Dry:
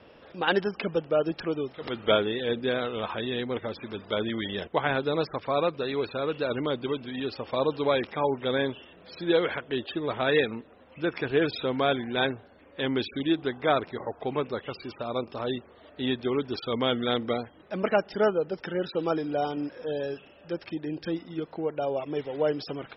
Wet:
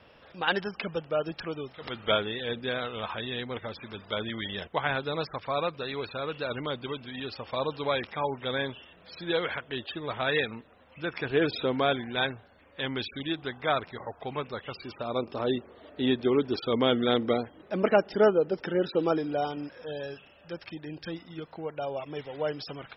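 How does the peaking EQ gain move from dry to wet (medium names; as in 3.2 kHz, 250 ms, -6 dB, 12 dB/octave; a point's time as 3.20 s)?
peaking EQ 340 Hz 1.7 oct
11.09 s -7.5 dB
11.57 s +2.5 dB
12.27 s -8 dB
14.51 s -8 dB
15.42 s +3.5 dB
18.98 s +3.5 dB
19.77 s -8 dB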